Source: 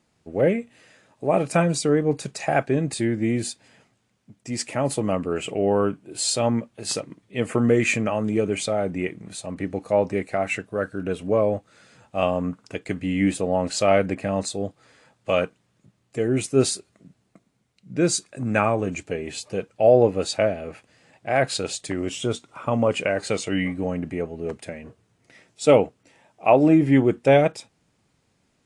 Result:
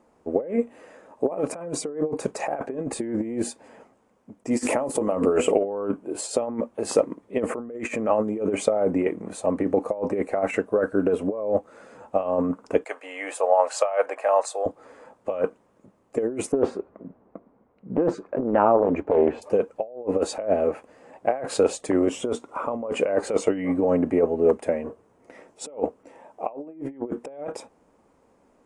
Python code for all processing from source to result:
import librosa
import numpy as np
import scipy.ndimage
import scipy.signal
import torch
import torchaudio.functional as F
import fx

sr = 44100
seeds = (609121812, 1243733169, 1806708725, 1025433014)

y = fx.chain(x, sr, fx.high_shelf(hz=4800.0, db=9.5),
    fx.hum_notches(base_hz=50, count=10),
    fx.sustainer(db_per_s=64.0), at=(4.51, 5.64))
y = fx.chain(y, sr, fx.highpass(hz=660.0, slope=24),
    fx.notch(hz=2000.0, q=26.0), at=(12.84, 14.66))
y = fx.chain(y, sr, fx.lowpass(hz=1500.0, slope=12),
    fx.over_compress(threshold_db=-26.0, ratio=-1.0),
    fx.doppler_dist(depth_ms=0.71), at=(16.52, 19.42))
y = fx.low_shelf(y, sr, hz=68.0, db=9.5)
y = fx.over_compress(y, sr, threshold_db=-26.0, ratio=-0.5)
y = fx.graphic_eq(y, sr, hz=(125, 250, 500, 1000, 4000), db=(-9, 8, 12, 11, -8))
y = y * librosa.db_to_amplitude(-6.5)